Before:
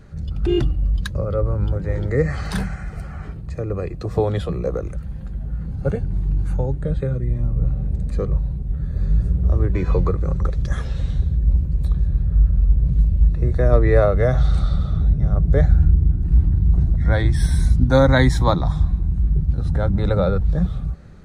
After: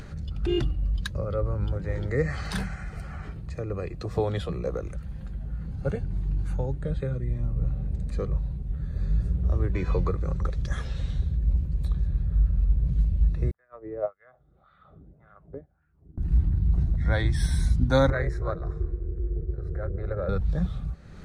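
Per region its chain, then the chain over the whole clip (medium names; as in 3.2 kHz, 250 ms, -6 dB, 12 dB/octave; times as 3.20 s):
13.51–16.18 s: low-pass 3.4 kHz 24 dB/octave + LFO band-pass sine 1.8 Hz 310–1700 Hz + upward expansion 2.5:1, over -37 dBFS
18.10–20.29 s: low-pass 1.4 kHz 6 dB/octave + AM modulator 300 Hz, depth 45% + static phaser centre 880 Hz, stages 6
whole clip: treble shelf 2 kHz +10 dB; upward compressor, threshold -24 dBFS; treble shelf 4.9 kHz -9 dB; trim -7 dB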